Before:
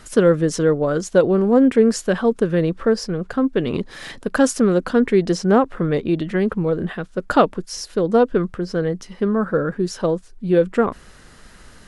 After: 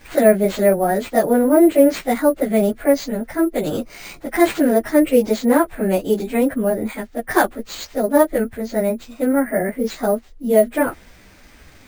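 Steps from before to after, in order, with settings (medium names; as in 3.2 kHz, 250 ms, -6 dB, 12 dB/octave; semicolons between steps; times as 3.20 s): frequency-domain pitch shifter +4 st; sample-and-hold 4×; trim +3 dB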